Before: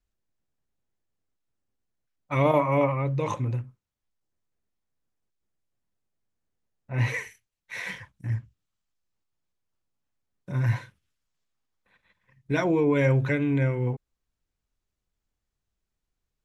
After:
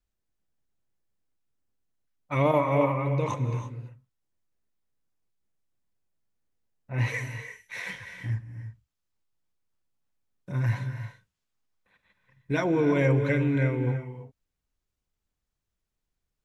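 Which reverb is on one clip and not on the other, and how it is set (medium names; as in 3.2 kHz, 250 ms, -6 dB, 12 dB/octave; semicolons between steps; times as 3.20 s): gated-style reverb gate 360 ms rising, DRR 8 dB; trim -1.5 dB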